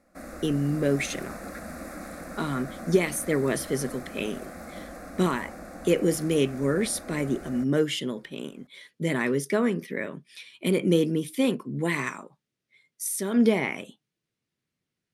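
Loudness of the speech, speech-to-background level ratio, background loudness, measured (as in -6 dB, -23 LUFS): -27.0 LUFS, 14.0 dB, -41.0 LUFS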